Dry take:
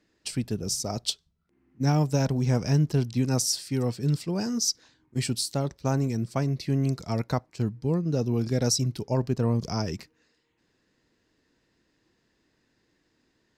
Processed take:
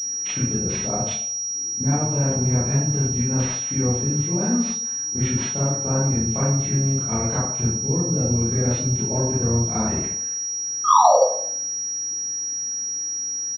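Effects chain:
high-pass filter 56 Hz 12 dB per octave
downward compressor 4 to 1, threshold −40 dBFS, peak gain reduction 17.5 dB
pitch-shifted copies added −5 semitones −10 dB
sound drawn into the spectrogram fall, 0:10.84–0:11.17, 480–1,300 Hz −30 dBFS
convolution reverb RT60 0.65 s, pre-delay 24 ms, DRR −10 dB
switching amplifier with a slow clock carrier 5,700 Hz
level +7 dB

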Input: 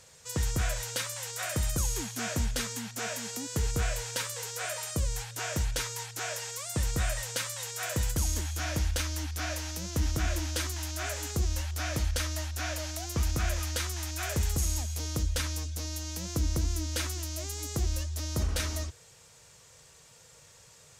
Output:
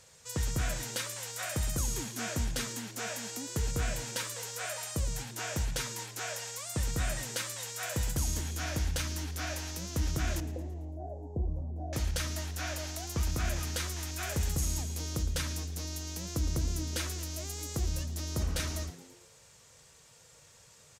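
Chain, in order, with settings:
0:10.40–0:11.93: elliptic low-pass filter 750 Hz, stop band 40 dB
on a send: echo with shifted repeats 112 ms, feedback 53%, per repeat +92 Hz, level −16 dB
on the sum: level −2.5 dB

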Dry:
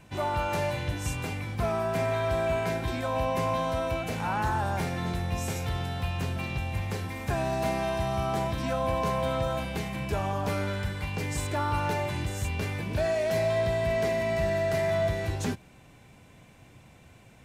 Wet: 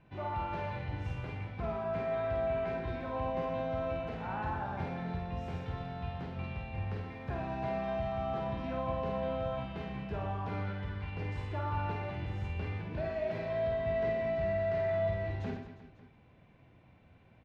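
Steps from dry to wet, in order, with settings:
high-frequency loss of the air 320 metres
reverse bouncing-ball delay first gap 50 ms, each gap 1.4×, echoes 5
level −8.5 dB

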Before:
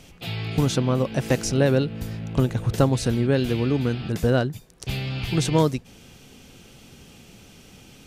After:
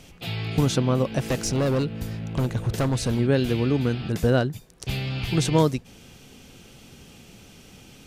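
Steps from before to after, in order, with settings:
0:01.18–0:03.19: hard clipping −19 dBFS, distortion −12 dB

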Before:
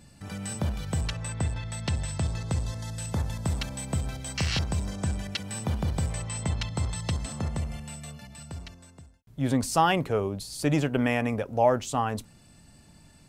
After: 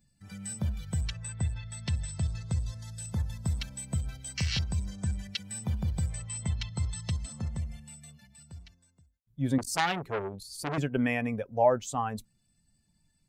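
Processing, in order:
spectral dynamics exaggerated over time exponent 1.5
0:09.58–0:10.78: saturating transformer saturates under 2,700 Hz

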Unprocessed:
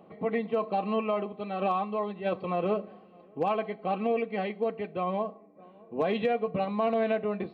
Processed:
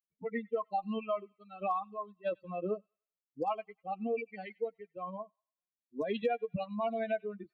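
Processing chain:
spectral dynamics exaggerated over time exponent 3
delay with a high-pass on its return 97 ms, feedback 35%, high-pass 1,900 Hz, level −23 dB

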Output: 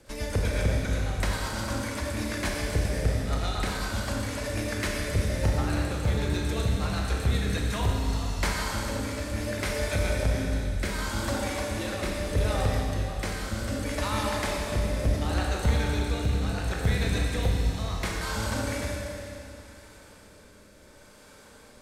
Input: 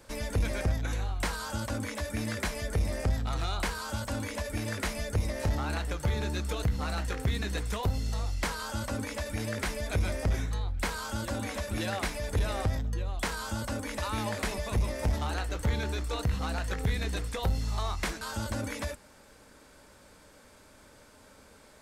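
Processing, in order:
rotating-speaker cabinet horn 8 Hz, later 0.7 Hz, at 0:07.15
four-comb reverb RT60 2.8 s, combs from 30 ms, DRR −1 dB
level +2.5 dB

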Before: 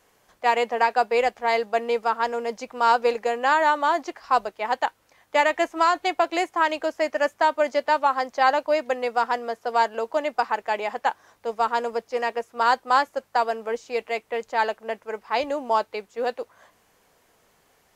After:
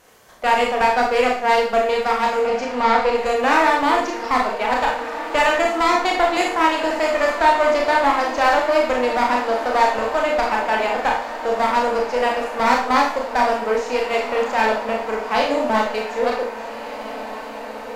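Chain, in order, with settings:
in parallel at +3 dB: downward compressor, threshold −30 dBFS, peak gain reduction 15.5 dB
on the sum: tape wow and flutter 27 cents
asymmetric clip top −21.5 dBFS
0:02.41–0:03.14: high-frequency loss of the air 100 metres
on a send: feedback delay with all-pass diffusion 1,592 ms, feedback 60%, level −12 dB
on the sum: four-comb reverb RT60 0.47 s, combs from 25 ms, DRR −1 dB

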